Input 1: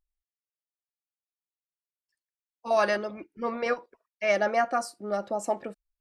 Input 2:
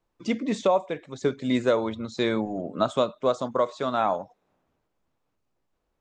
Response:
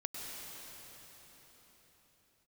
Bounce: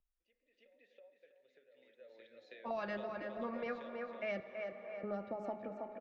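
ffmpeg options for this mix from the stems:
-filter_complex "[0:a]lowpass=2100,volume=-4dB,asplit=3[link_01][link_02][link_03];[link_01]atrim=end=4.4,asetpts=PTS-STARTPTS,afade=type=out:start_time=4.396:duration=0.004:curve=hsin[link_04];[link_02]atrim=start=4.4:end=5.03,asetpts=PTS-STARTPTS,volume=0[link_05];[link_03]atrim=start=5.03,asetpts=PTS-STARTPTS,afade=type=in:duration=0.004:curve=hsin[link_06];[link_04][link_05][link_06]concat=n=3:v=0:a=1,asplit=4[link_07][link_08][link_09][link_10];[link_08]volume=-12.5dB[link_11];[link_09]volume=-8.5dB[link_12];[1:a]tiltshelf=frequency=880:gain=-8.5,acompressor=threshold=-31dB:ratio=12,asplit=3[link_13][link_14][link_15];[link_13]bandpass=frequency=530:width_type=q:width=8,volume=0dB[link_16];[link_14]bandpass=frequency=1840:width_type=q:width=8,volume=-6dB[link_17];[link_15]bandpass=frequency=2480:width_type=q:width=8,volume=-9dB[link_18];[link_16][link_17][link_18]amix=inputs=3:normalize=0,afade=type=in:start_time=1.68:duration=0.24:silence=0.237137,asplit=3[link_19][link_20][link_21];[link_20]volume=-22dB[link_22];[link_21]volume=-7.5dB[link_23];[link_10]apad=whole_len=264712[link_24];[link_19][link_24]sidechaingate=range=-22dB:threshold=-46dB:ratio=16:detection=peak[link_25];[2:a]atrim=start_sample=2205[link_26];[link_11][link_22]amix=inputs=2:normalize=0[link_27];[link_27][link_26]afir=irnorm=-1:irlink=0[link_28];[link_12][link_23]amix=inputs=2:normalize=0,aecho=0:1:324|648|972|1296|1620:1|0.33|0.109|0.0359|0.0119[link_29];[link_07][link_25][link_28][link_29]amix=inputs=4:normalize=0,equalizer=frequency=8100:width=1.4:gain=-15,bandreject=frequency=70.33:width_type=h:width=4,bandreject=frequency=140.66:width_type=h:width=4,bandreject=frequency=210.99:width_type=h:width=4,bandreject=frequency=281.32:width_type=h:width=4,bandreject=frequency=351.65:width_type=h:width=4,bandreject=frequency=421.98:width_type=h:width=4,bandreject=frequency=492.31:width_type=h:width=4,bandreject=frequency=562.64:width_type=h:width=4,bandreject=frequency=632.97:width_type=h:width=4,bandreject=frequency=703.3:width_type=h:width=4,bandreject=frequency=773.63:width_type=h:width=4,bandreject=frequency=843.96:width_type=h:width=4,bandreject=frequency=914.29:width_type=h:width=4,bandreject=frequency=984.62:width_type=h:width=4,bandreject=frequency=1054.95:width_type=h:width=4,bandreject=frequency=1125.28:width_type=h:width=4,bandreject=frequency=1195.61:width_type=h:width=4,bandreject=frequency=1265.94:width_type=h:width=4,bandreject=frequency=1336.27:width_type=h:width=4,bandreject=frequency=1406.6:width_type=h:width=4,bandreject=frequency=1476.93:width_type=h:width=4,bandreject=frequency=1547.26:width_type=h:width=4,bandreject=frequency=1617.59:width_type=h:width=4,bandreject=frequency=1687.92:width_type=h:width=4,bandreject=frequency=1758.25:width_type=h:width=4,bandreject=frequency=1828.58:width_type=h:width=4,bandreject=frequency=1898.91:width_type=h:width=4,bandreject=frequency=1969.24:width_type=h:width=4,bandreject=frequency=2039.57:width_type=h:width=4,bandreject=frequency=2109.9:width_type=h:width=4,bandreject=frequency=2180.23:width_type=h:width=4,bandreject=frequency=2250.56:width_type=h:width=4,acrossover=split=200|3000[link_30][link_31][link_32];[link_31]acompressor=threshold=-41dB:ratio=4[link_33];[link_30][link_33][link_32]amix=inputs=3:normalize=0"

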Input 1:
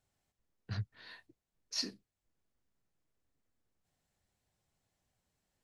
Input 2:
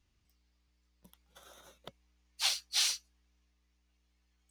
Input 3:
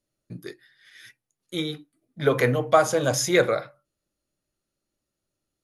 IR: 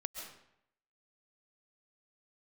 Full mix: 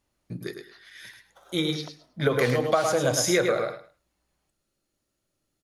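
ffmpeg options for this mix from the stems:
-filter_complex "[0:a]highpass=990,volume=-6dB,asplit=2[link_01][link_02];[link_02]volume=-6.5dB[link_03];[1:a]equalizer=frequency=800:width=0.6:gain=14,volume=-8.5dB,asplit=2[link_04][link_05];[link_05]volume=-9dB[link_06];[2:a]volume=2.5dB,asplit=2[link_07][link_08];[link_08]volume=-6.5dB[link_09];[3:a]atrim=start_sample=2205[link_10];[link_06][link_10]afir=irnorm=-1:irlink=0[link_11];[link_03][link_09]amix=inputs=2:normalize=0,aecho=0:1:106|212|318:1|0.2|0.04[link_12];[link_01][link_04][link_07][link_11][link_12]amix=inputs=5:normalize=0,acompressor=threshold=-19dB:ratio=6"

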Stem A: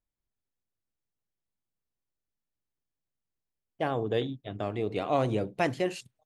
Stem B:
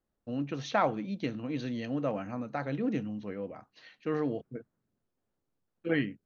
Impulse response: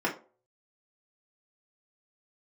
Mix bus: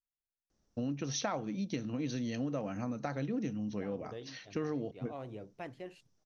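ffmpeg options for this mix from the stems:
-filter_complex "[0:a]equalizer=frequency=7900:width=0.7:gain=-8,volume=-16.5dB[link_01];[1:a]lowpass=frequency=5800:width_type=q:width=7,lowshelf=frequency=350:gain=5.5,adelay=500,volume=2.5dB[link_02];[link_01][link_02]amix=inputs=2:normalize=0,acompressor=threshold=-34dB:ratio=4"

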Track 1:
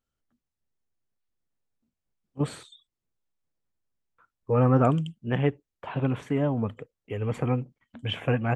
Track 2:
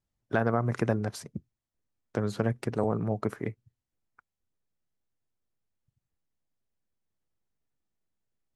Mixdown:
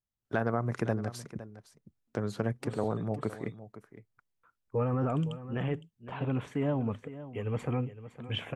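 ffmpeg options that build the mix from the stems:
ffmpeg -i stem1.wav -i stem2.wav -filter_complex "[0:a]alimiter=limit=-17.5dB:level=0:latency=1:release=12,adelay=250,volume=-4dB,asplit=2[link_01][link_02];[link_02]volume=-14dB[link_03];[1:a]agate=range=-7dB:threshold=-59dB:ratio=16:detection=peak,volume=-3.5dB,asplit=3[link_04][link_05][link_06];[link_05]volume=-15dB[link_07];[link_06]apad=whole_len=388298[link_08];[link_01][link_08]sidechaincompress=threshold=-33dB:ratio=8:attack=8:release=985[link_09];[link_03][link_07]amix=inputs=2:normalize=0,aecho=0:1:511:1[link_10];[link_09][link_04][link_10]amix=inputs=3:normalize=0" out.wav

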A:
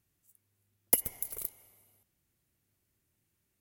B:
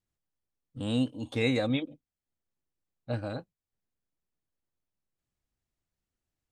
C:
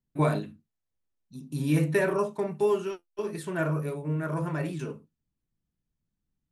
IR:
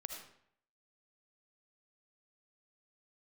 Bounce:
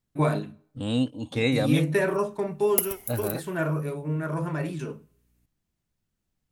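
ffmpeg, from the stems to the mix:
-filter_complex "[0:a]aeval=exprs='val(0)+0.000398*(sin(2*PI*60*n/s)+sin(2*PI*2*60*n/s)/2+sin(2*PI*3*60*n/s)/3+sin(2*PI*4*60*n/s)/4+sin(2*PI*5*60*n/s)/5)':channel_layout=same,adelay=1850,volume=-0.5dB,asplit=2[link_01][link_02];[link_02]volume=-9dB[link_03];[1:a]volume=3dB[link_04];[2:a]volume=0.5dB,asplit=2[link_05][link_06];[link_06]volume=-19dB[link_07];[3:a]atrim=start_sample=2205[link_08];[link_03][link_07]amix=inputs=2:normalize=0[link_09];[link_09][link_08]afir=irnorm=-1:irlink=0[link_10];[link_01][link_04][link_05][link_10]amix=inputs=4:normalize=0"

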